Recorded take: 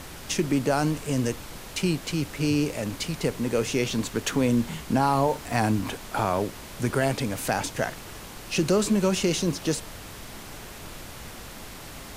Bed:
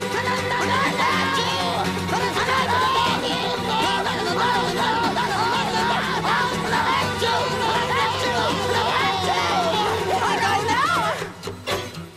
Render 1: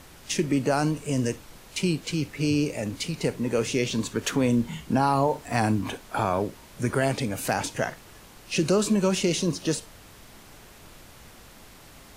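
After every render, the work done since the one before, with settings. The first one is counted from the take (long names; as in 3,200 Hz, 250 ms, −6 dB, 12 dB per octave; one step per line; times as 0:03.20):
noise reduction from a noise print 8 dB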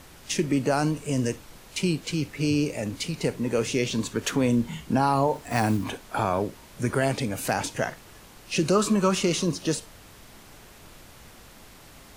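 0:05.35–0:05.87: one scale factor per block 5 bits
0:08.75–0:09.45: parametric band 1,200 Hz +11.5 dB 0.41 octaves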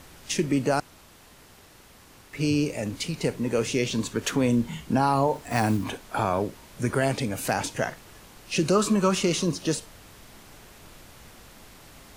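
0:00.80–0:02.33: fill with room tone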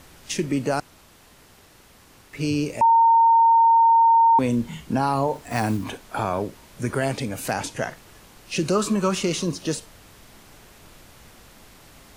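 0:02.81–0:04.39: beep over 916 Hz −12 dBFS
0:07.51–0:07.91: linear-phase brick-wall low-pass 13,000 Hz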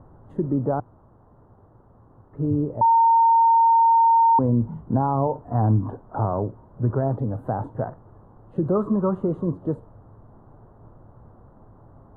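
inverse Chebyshev low-pass filter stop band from 2,200 Hz, stop band 40 dB
parametric band 110 Hz +10 dB 0.51 octaves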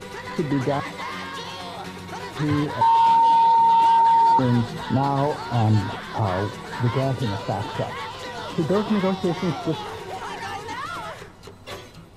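mix in bed −11.5 dB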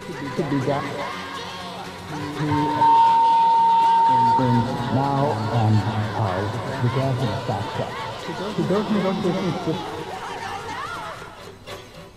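on a send: backwards echo 300 ms −9.5 dB
on the sum: reverb whose tail is shaped and stops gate 340 ms rising, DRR 7.5 dB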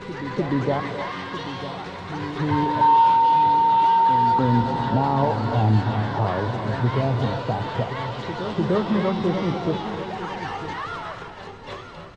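high-frequency loss of the air 120 metres
single-tap delay 949 ms −12 dB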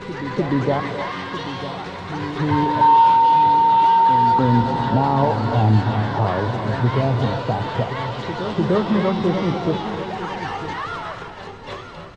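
level +3 dB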